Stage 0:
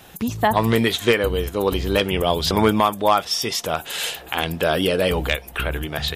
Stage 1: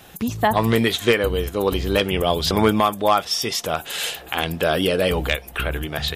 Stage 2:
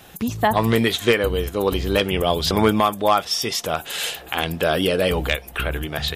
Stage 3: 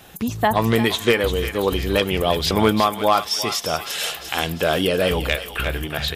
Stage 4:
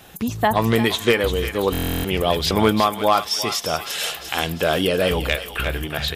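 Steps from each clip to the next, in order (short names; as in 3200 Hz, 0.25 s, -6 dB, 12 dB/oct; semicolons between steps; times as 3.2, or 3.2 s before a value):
notch 940 Hz, Q 22
nothing audible
thinning echo 0.347 s, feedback 53%, high-pass 1200 Hz, level -8 dB
stuck buffer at 1.72, samples 1024, times 13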